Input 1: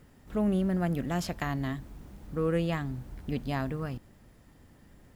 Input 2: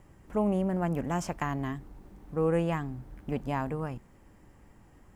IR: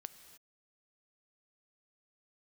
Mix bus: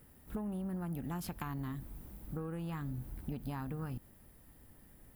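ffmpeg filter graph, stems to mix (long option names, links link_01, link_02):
-filter_complex "[0:a]acompressor=threshold=-30dB:ratio=6,aexciter=amount=5.6:drive=4:freq=9100,volume=-5.5dB[link_01];[1:a]afwtdn=0.0141,acompressor=threshold=-34dB:ratio=6,volume=-4.5dB,asplit=2[link_02][link_03];[link_03]apad=whole_len=227519[link_04];[link_01][link_04]sidechaincompress=threshold=-43dB:ratio=8:attack=20:release=225[link_05];[link_05][link_02]amix=inputs=2:normalize=0"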